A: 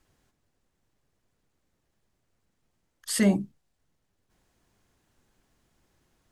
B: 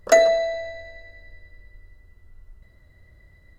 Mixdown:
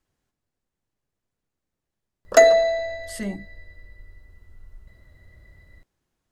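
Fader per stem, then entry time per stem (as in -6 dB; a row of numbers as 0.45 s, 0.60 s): -8.5 dB, +2.0 dB; 0.00 s, 2.25 s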